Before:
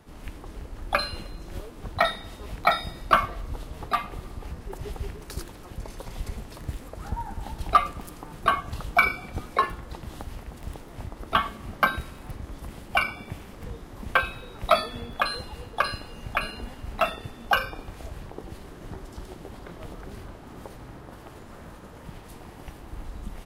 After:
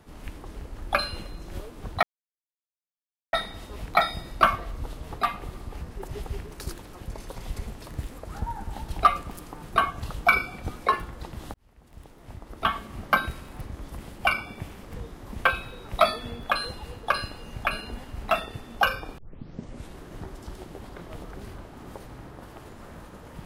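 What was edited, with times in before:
2.03 s: insert silence 1.30 s
10.24–11.68 s: fade in
17.88 s: tape start 0.80 s

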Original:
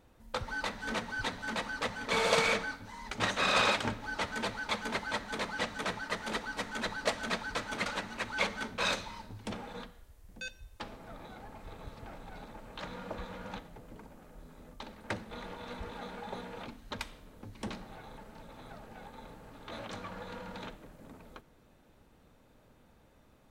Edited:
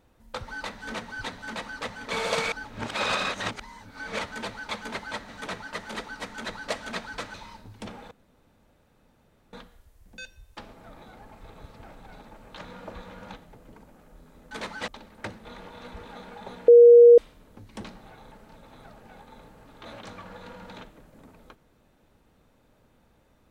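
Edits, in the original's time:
2.52–4.19 s: reverse
5.29–5.66 s: move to 14.74 s
7.71–8.99 s: delete
9.76 s: insert room tone 1.42 s
16.54–17.04 s: bleep 475 Hz -8 dBFS

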